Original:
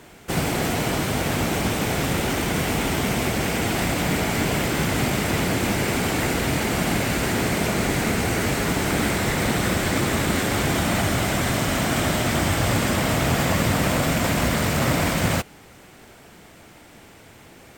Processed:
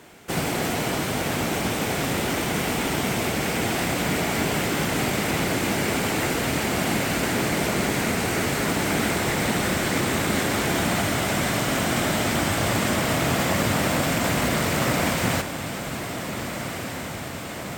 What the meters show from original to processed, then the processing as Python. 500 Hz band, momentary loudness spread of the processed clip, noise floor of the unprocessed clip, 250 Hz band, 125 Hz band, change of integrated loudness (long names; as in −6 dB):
−0.5 dB, 8 LU, −48 dBFS, −1.5 dB, −3.5 dB, −1.5 dB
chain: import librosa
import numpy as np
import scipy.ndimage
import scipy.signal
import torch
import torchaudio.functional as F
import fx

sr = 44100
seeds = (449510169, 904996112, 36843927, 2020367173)

y = fx.low_shelf(x, sr, hz=79.0, db=-11.0)
y = fx.echo_diffused(y, sr, ms=1602, feedback_pct=71, wet_db=-10.0)
y = y * 10.0 ** (-1.0 / 20.0)